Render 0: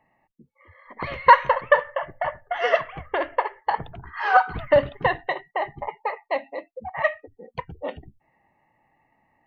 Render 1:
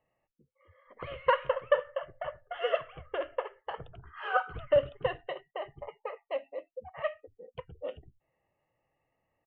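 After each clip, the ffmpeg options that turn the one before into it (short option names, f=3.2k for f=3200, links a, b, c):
-af "firequalizer=gain_entry='entry(120,0);entry(220,-9);entry(510,5);entry(870,-11);entry(1300,2);entry(1900,-9);entry(3000,4);entry(4300,-19)':delay=0.05:min_phase=1,volume=-8.5dB"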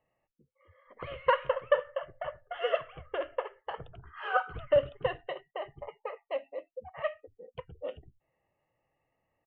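-af anull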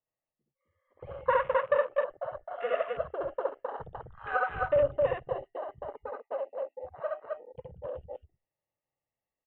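-filter_complex "[0:a]aecho=1:1:67.06|262.4:0.891|0.794,afwtdn=0.0158,acrossover=split=3000[a][b];[b]acompressor=threshold=-59dB:ratio=4:attack=1:release=60[c];[a][c]amix=inputs=2:normalize=0,volume=-2dB"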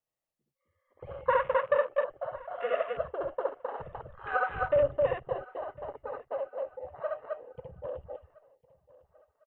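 -af "aecho=1:1:1053|2106|3159:0.0794|0.0294|0.0109"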